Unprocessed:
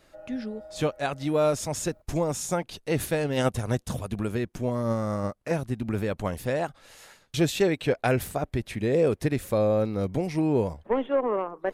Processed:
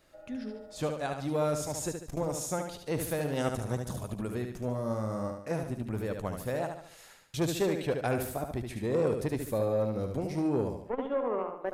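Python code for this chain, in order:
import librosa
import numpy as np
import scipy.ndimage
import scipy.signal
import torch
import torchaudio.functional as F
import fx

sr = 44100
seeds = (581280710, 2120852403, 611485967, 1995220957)

y = fx.high_shelf(x, sr, hz=11000.0, db=5.0)
y = fx.echo_feedback(y, sr, ms=73, feedback_pct=43, wet_db=-6.0)
y = fx.dynamic_eq(y, sr, hz=2600.0, q=1.2, threshold_db=-48.0, ratio=4.0, max_db=-4)
y = fx.transformer_sat(y, sr, knee_hz=460.0)
y = F.gain(torch.from_numpy(y), -5.5).numpy()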